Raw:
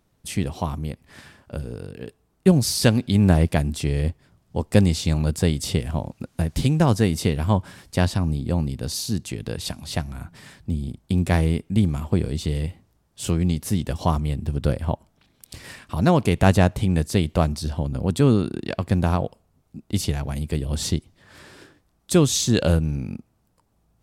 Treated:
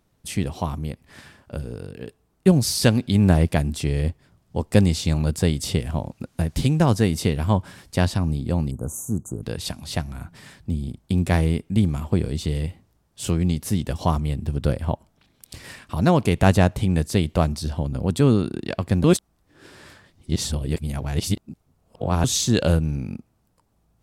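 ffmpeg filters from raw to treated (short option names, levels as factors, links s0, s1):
-filter_complex "[0:a]asettb=1/sr,asplit=3[s0][s1][s2];[s0]atrim=end=8.714[s3];[s1]atrim=start=8.71:end=9.43,asetpts=PTS-STARTPTS,afade=t=in:d=0.004:c=qsin,afade=t=out:st=0.716:d=0.004:c=qsin,asuperstop=centerf=3100:order=20:qfactor=0.62[s4];[s2]atrim=start=9.426[s5];[s3][s4]acrossfade=d=0.004:c1=hsin:c2=qsin[s6];[s6][s5]acrossfade=d=0.004:c1=qsin:c2=hsin,asplit=3[s7][s8][s9];[s7]atrim=end=19.042[s10];[s8]atrim=start=19.038:end=22.242,asetpts=PTS-STARTPTS,areverse[s11];[s9]atrim=start=22.238[s12];[s10][s11]acrossfade=d=0.004:c1=hsin:c2=hsin[s13];[s13][s12]acrossfade=d=0.004:c1=hsin:c2=hsin"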